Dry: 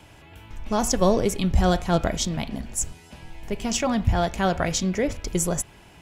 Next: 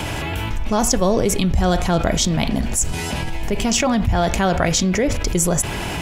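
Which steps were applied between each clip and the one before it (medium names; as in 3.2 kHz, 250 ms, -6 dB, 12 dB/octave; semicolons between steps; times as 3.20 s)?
level flattener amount 70%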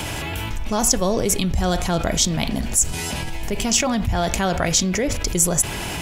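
treble shelf 3.9 kHz +7.5 dB; trim -3.5 dB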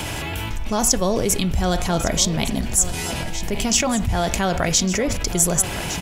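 delay 1159 ms -13 dB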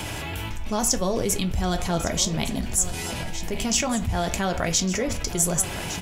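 flange 0.66 Hz, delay 9 ms, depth 5.1 ms, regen -64%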